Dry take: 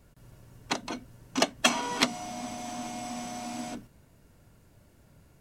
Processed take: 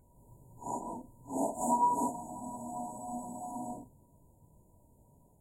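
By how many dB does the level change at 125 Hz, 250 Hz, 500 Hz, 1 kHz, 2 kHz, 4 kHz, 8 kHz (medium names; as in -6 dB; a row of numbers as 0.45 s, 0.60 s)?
-4.5 dB, -3.5 dB, -4.0 dB, +2.0 dB, under -40 dB, under -40 dB, -8.5 dB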